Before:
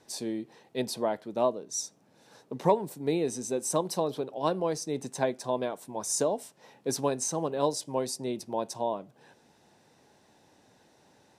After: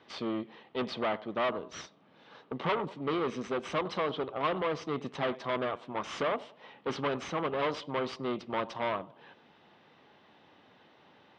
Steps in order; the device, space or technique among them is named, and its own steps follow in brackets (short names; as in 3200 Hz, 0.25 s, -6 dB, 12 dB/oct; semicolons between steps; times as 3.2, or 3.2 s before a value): analogue delay pedal into a guitar amplifier (analogue delay 96 ms, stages 2048, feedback 37%, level -22 dB; tube stage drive 32 dB, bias 0.65; speaker cabinet 84–3900 Hz, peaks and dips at 120 Hz -4 dB, 1200 Hz +10 dB, 2100 Hz +5 dB, 3100 Hz +9 dB); gain +4 dB